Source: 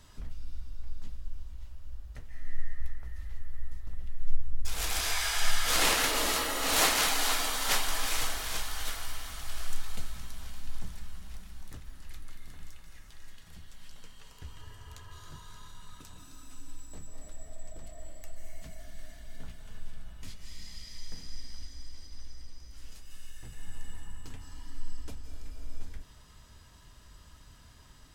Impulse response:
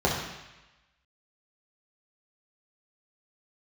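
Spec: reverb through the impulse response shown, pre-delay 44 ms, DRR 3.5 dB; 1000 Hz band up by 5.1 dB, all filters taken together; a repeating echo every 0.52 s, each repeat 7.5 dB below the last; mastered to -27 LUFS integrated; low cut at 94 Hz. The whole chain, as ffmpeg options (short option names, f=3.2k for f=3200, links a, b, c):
-filter_complex "[0:a]highpass=94,equalizer=f=1k:t=o:g=6.5,aecho=1:1:520|1040|1560|2080|2600:0.422|0.177|0.0744|0.0312|0.0131,asplit=2[a][b];[1:a]atrim=start_sample=2205,adelay=44[c];[b][c]afir=irnorm=-1:irlink=0,volume=-18.5dB[d];[a][d]amix=inputs=2:normalize=0,volume=-1dB"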